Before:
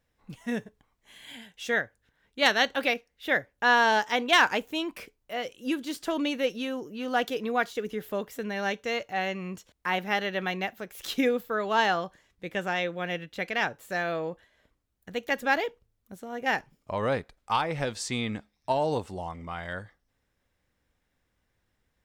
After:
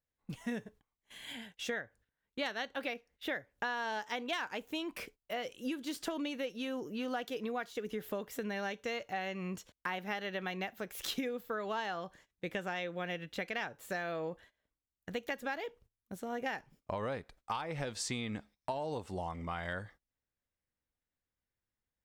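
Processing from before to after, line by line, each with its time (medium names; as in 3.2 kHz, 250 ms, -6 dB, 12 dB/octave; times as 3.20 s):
1.33–3.33 s: treble shelf 3.2 kHz -4 dB
whole clip: gate -54 dBFS, range -18 dB; compression 10:1, threshold -34 dBFS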